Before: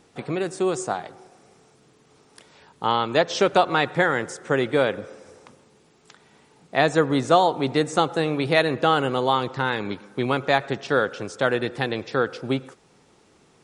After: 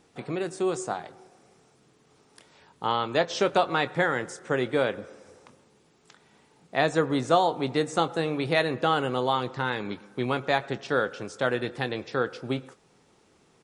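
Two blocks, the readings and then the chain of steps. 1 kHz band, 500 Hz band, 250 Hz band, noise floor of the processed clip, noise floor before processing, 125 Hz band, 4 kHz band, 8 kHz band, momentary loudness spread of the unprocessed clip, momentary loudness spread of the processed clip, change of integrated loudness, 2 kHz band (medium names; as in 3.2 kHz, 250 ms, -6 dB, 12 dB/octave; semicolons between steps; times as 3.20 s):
-4.5 dB, -4.5 dB, -4.5 dB, -63 dBFS, -58 dBFS, -4.0 dB, -4.5 dB, -4.5 dB, 9 LU, 9 LU, -4.5 dB, -4.5 dB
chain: doubling 24 ms -14 dB; trim -4.5 dB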